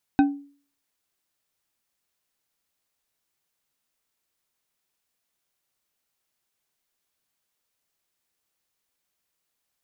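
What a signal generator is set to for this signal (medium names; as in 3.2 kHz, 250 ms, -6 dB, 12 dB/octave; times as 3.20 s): glass hit bar, lowest mode 283 Hz, decay 0.44 s, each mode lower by 7 dB, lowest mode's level -11.5 dB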